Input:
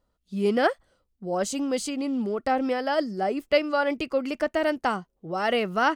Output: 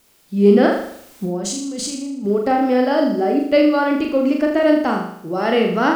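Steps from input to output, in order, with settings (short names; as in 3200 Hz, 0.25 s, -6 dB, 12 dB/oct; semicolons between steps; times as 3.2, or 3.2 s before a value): LPF 8500 Hz; requantised 10-bit, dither triangular; bell 290 Hz +8.5 dB 1.3 oct; 0.7–2.25 negative-ratio compressor -31 dBFS, ratio -1; harmonic-percussive split percussive -3 dB; on a send: flutter echo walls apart 6.8 m, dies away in 0.66 s; on the sum: gain +3 dB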